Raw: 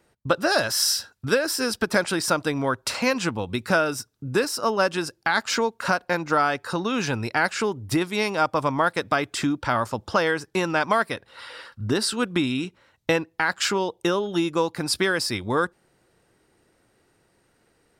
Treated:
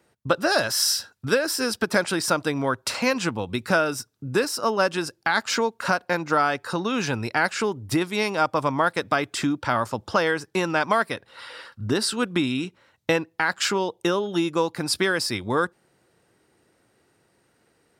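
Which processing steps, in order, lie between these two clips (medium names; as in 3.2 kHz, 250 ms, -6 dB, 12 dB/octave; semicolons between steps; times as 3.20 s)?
high-pass 77 Hz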